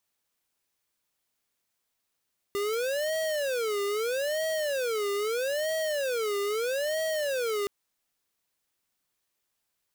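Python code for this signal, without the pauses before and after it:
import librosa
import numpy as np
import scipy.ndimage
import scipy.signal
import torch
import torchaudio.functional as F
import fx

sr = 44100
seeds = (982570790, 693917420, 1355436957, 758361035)

y = fx.siren(sr, length_s=5.12, kind='wail', low_hz=402.0, high_hz=639.0, per_s=0.78, wave='square', level_db=-29.0)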